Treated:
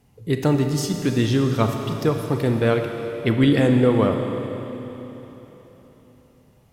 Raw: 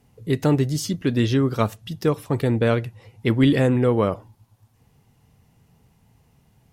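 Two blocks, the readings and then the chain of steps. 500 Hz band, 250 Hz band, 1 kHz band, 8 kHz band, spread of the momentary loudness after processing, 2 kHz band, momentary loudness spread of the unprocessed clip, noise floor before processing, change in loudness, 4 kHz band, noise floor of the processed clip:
+1.5 dB, +1.5 dB, +1.5 dB, no reading, 16 LU, +1.5 dB, 8 LU, -61 dBFS, +0.5 dB, +1.5 dB, -56 dBFS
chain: Schroeder reverb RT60 3.8 s, combs from 28 ms, DRR 4.5 dB

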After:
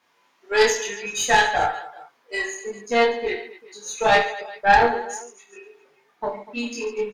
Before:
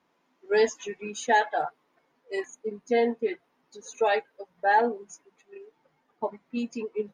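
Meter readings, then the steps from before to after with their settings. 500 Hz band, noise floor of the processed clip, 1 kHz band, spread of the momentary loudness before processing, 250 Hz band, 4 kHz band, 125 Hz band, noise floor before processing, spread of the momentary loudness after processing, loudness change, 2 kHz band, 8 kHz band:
+4.0 dB, -64 dBFS, +6.5 dB, 14 LU, +1.0 dB, +12.5 dB, no reading, -72 dBFS, 16 LU, +6.0 dB, +9.5 dB, +13.0 dB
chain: tilt shelf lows -5 dB, about 800 Hz; chorus voices 4, 0.54 Hz, delay 20 ms, depth 1.5 ms; bass shelf 460 Hz -5 dB; reverse bouncing-ball echo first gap 30 ms, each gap 1.5×, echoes 5; Chebyshev shaper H 3 -19 dB, 4 -16 dB, 5 -24 dB, 6 -42 dB, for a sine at -11.5 dBFS; trim +8.5 dB

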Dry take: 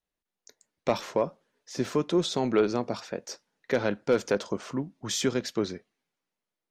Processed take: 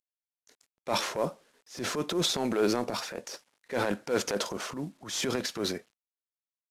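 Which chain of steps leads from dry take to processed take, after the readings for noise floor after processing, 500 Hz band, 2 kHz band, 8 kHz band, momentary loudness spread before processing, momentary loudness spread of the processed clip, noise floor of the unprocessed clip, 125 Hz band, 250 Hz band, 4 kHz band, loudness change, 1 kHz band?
under -85 dBFS, -4.0 dB, +0.5 dB, +2.0 dB, 12 LU, 13 LU, under -85 dBFS, -4.0 dB, -3.5 dB, +3.0 dB, -2.0 dB, 0.0 dB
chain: CVSD coder 64 kbps; bass shelf 170 Hz -9 dB; transient shaper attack -9 dB, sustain +8 dB

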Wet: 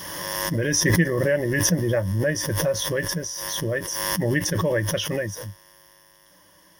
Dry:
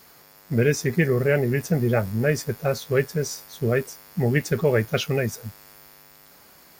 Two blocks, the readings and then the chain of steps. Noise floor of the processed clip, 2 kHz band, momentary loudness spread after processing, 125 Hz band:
-55 dBFS, +2.0 dB, 8 LU, -1.0 dB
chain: rippled EQ curve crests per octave 1.2, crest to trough 15 dB; swell ahead of each attack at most 25 dB/s; trim -5 dB

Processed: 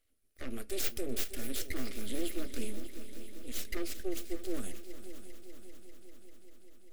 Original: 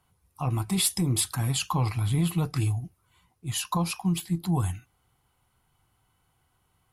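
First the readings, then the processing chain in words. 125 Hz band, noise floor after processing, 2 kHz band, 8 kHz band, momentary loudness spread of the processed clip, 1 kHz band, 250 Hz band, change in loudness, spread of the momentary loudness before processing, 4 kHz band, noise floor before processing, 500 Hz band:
-25.0 dB, -67 dBFS, -6.0 dB, -12.0 dB, 19 LU, -20.0 dB, -11.0 dB, -12.5 dB, 9 LU, -11.0 dB, -71 dBFS, -1.0 dB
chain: full-wave rectifier; static phaser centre 390 Hz, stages 4; multi-head delay 197 ms, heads second and third, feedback 66%, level -14 dB; trim -5 dB

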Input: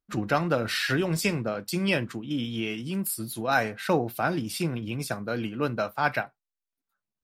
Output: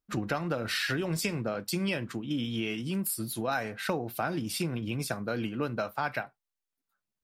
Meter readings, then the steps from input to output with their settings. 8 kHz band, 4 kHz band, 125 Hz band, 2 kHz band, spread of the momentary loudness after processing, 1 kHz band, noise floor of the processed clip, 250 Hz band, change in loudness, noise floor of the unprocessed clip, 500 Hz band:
-1.5 dB, -2.5 dB, -3.5 dB, -5.0 dB, 4 LU, -6.0 dB, under -85 dBFS, -3.5 dB, -4.0 dB, under -85 dBFS, -5.0 dB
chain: compression, threshold -27 dBFS, peak gain reduction 9 dB

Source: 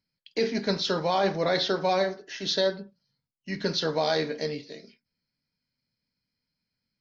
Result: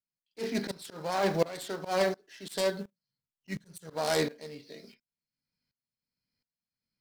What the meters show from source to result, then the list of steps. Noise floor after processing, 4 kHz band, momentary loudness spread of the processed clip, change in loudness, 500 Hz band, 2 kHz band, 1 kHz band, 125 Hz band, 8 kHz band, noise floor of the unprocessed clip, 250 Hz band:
under -85 dBFS, -10.0 dB, 17 LU, -5.0 dB, -5.0 dB, -4.5 dB, -5.5 dB, -4.5 dB, no reading, under -85 dBFS, -4.5 dB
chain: self-modulated delay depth 0.13 ms; time-frequency box 3.54–3.90 s, 200–5700 Hz -10 dB; slow attack 101 ms; in parallel at -8 dB: companded quantiser 4-bit; on the sum: sawtooth tremolo in dB swelling 1.4 Hz, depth 21 dB

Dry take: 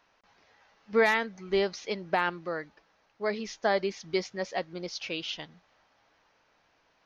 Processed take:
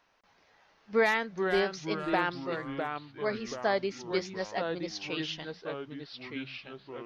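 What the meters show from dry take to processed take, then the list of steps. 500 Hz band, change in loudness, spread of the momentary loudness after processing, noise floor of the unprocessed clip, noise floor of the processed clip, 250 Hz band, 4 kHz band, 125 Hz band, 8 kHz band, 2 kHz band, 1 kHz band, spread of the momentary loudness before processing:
-1.0 dB, -2.0 dB, 13 LU, -69 dBFS, -66 dBFS, +1.5 dB, -1.0 dB, +2.5 dB, no reading, -1.0 dB, -0.5 dB, 12 LU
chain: ever faster or slower copies 250 ms, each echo -3 st, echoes 3, each echo -6 dB; trim -2 dB

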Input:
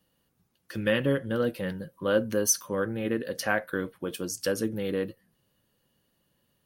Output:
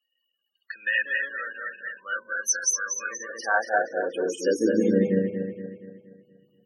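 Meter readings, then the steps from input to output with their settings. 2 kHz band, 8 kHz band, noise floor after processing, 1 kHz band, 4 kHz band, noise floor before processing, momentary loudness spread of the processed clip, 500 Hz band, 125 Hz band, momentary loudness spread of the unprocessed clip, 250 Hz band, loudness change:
+7.5 dB, +4.0 dB, -78 dBFS, +7.0 dB, -3.0 dB, -74 dBFS, 12 LU, +1.5 dB, -1.0 dB, 10 LU, +3.0 dB, +3.0 dB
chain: backward echo that repeats 118 ms, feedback 68%, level 0 dB; loudest bins only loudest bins 32; high-pass sweep 1.8 kHz -> 170 Hz, 2.82–5.22 s

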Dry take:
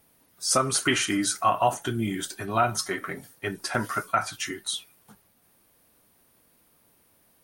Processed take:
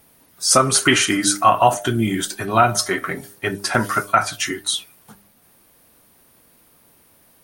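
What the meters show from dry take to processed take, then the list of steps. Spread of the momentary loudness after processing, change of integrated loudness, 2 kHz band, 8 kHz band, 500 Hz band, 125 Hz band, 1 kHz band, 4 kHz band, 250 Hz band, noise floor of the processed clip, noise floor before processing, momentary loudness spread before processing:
10 LU, +8.5 dB, +8.5 dB, +8.5 dB, +8.0 dB, +8.0 dB, +8.5 dB, +8.5 dB, +7.5 dB, -55 dBFS, -64 dBFS, 10 LU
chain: de-hum 100.7 Hz, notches 8; trim +8.5 dB

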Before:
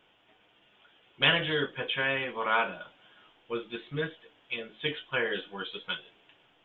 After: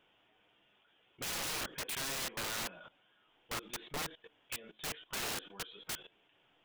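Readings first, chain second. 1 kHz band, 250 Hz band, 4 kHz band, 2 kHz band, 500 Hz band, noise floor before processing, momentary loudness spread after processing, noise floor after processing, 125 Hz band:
-10.5 dB, -11.5 dB, -9.0 dB, -13.0 dB, -14.5 dB, -65 dBFS, 9 LU, -71 dBFS, -12.0 dB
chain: level held to a coarse grid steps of 18 dB; integer overflow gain 34 dB; trim +1 dB

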